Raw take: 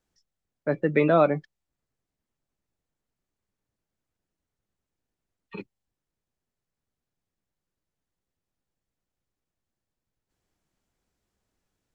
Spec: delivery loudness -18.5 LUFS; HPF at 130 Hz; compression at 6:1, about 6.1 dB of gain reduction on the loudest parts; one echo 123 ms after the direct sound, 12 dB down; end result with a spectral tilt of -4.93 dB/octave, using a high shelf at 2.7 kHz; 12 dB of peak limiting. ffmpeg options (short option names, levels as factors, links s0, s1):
-af "highpass=130,highshelf=f=2700:g=-3.5,acompressor=threshold=0.0891:ratio=6,alimiter=level_in=1.06:limit=0.0631:level=0:latency=1,volume=0.944,aecho=1:1:123:0.251,volume=7.94"